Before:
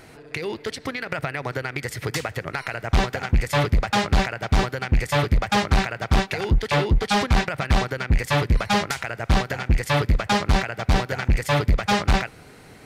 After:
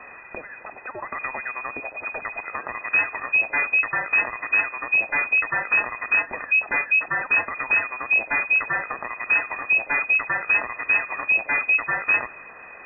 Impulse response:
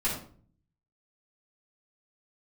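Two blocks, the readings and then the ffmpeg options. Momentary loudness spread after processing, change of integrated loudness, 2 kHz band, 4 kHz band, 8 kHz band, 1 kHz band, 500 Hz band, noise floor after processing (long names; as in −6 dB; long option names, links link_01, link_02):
12 LU, +2.0 dB, +8.0 dB, below −40 dB, below −40 dB, −4.5 dB, −10.5 dB, −43 dBFS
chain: -af "aeval=exprs='val(0)+0.5*0.0224*sgn(val(0))':channel_layout=same,afftfilt=real='re*(1-between(b*sr/4096,160,550))':imag='im*(1-between(b*sr/4096,160,550))':win_size=4096:overlap=0.75,lowpass=frequency=2200:width_type=q:width=0.5098,lowpass=frequency=2200:width_type=q:width=0.6013,lowpass=frequency=2200:width_type=q:width=0.9,lowpass=frequency=2200:width_type=q:width=2.563,afreqshift=-2600,volume=-2.5dB"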